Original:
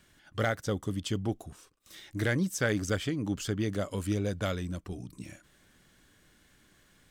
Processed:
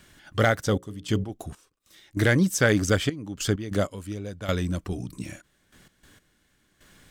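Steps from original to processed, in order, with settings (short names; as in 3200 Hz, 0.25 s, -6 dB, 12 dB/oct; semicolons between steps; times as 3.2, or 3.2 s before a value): 0.65–1.3 notches 60/120/180/240/300/360/420/480/540 Hz; step gate "xxxxx..x.x....x" 97 bpm -12 dB; gain +8 dB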